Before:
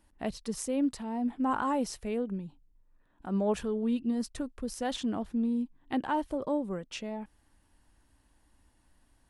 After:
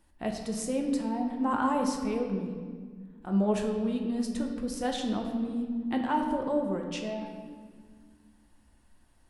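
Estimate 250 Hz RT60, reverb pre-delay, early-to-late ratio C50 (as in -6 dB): 2.5 s, 6 ms, 5.0 dB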